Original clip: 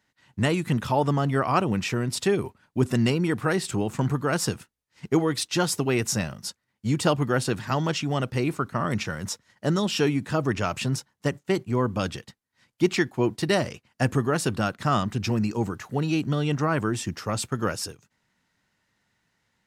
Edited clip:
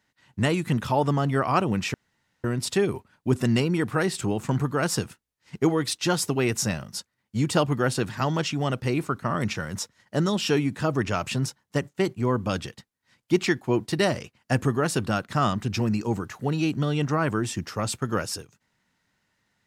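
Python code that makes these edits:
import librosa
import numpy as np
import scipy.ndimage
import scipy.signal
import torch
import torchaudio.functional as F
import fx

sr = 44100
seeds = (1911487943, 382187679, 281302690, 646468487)

y = fx.edit(x, sr, fx.insert_room_tone(at_s=1.94, length_s=0.5), tone=tone)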